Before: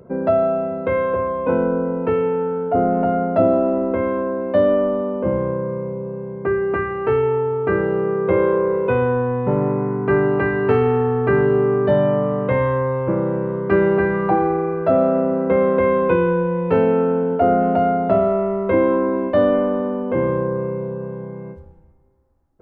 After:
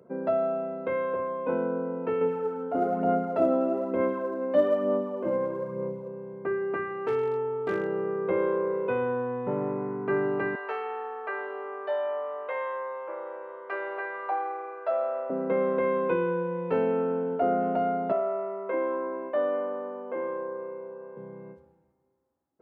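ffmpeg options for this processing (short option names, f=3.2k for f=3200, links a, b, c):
-filter_complex "[0:a]asettb=1/sr,asplit=3[a][b][c];[a]atrim=end=2.214[d];[b]atrim=start=2.21:end=6.08,asetpts=PTS-STARTPTS,afade=t=in:d=0.004:c=qsin,afade=t=out:st=3.866:d=0.004:c=qsin,aphaser=in_gain=1:out_gain=1:delay=3.9:decay=0.45:speed=1.1:type=sinusoidal[e];[c]atrim=start=6.076[f];[d][e]acrossfade=d=0.004:c1=hsin:c2=qsin[g];[g][f]acrossfade=d=0.004:c1=qsin:c2=hsin,asplit=3[h][i][j];[h]afade=t=out:st=6.77:d=0.02[k];[i]volume=12.5dB,asoftclip=hard,volume=-12.5dB,afade=t=in:st=6.77:d=0.02,afade=t=out:st=7.86:d=0.02[l];[j]afade=t=in:st=7.86:d=0.02[m];[k][l][m]amix=inputs=3:normalize=0,asettb=1/sr,asplit=3[n][o][p];[n]atrim=end=10.554[q];[o]atrim=start=10.55:end=15.3,asetpts=PTS-STARTPTS,afade=t=in:d=0.004:c=qsin,afade=t=out:st=4.746:d=0.004:c=qsin,highpass=f=570:w=0.5412,highpass=f=570:w=1.3066[r];[p]atrim=start=15.296[s];[q][r]acrossfade=d=0.004:c1=hsin:c2=qsin[t];[t][s]acrossfade=d=0.004:c1=qsin:c2=hsin,asettb=1/sr,asplit=3[u][v][w];[u]atrim=end=18.124[x];[v]atrim=start=18.12:end=21.17,asetpts=PTS-STARTPTS,afade=t=in:d=0.004:c=qsin,afade=t=out:st=3.046:d=0.004:c=qsin,highpass=450,lowpass=2.3k[y];[w]atrim=start=21.166[z];[x][y]acrossfade=d=0.004:c1=hsin:c2=qsin[aa];[aa][z]acrossfade=d=0.004:c1=qsin:c2=hsin,highpass=200,volume=-9dB"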